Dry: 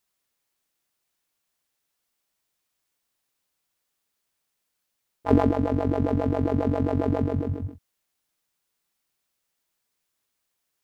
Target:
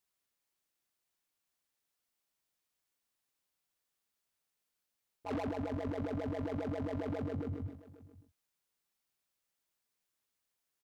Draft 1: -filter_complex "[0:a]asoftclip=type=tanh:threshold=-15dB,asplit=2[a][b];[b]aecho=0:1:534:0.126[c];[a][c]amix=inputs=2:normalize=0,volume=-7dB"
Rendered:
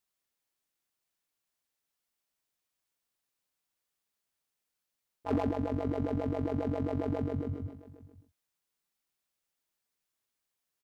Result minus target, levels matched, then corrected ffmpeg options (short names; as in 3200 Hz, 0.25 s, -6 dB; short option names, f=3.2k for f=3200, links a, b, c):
soft clip: distortion -8 dB
-filter_complex "[0:a]asoftclip=type=tanh:threshold=-26dB,asplit=2[a][b];[b]aecho=0:1:534:0.126[c];[a][c]amix=inputs=2:normalize=0,volume=-7dB"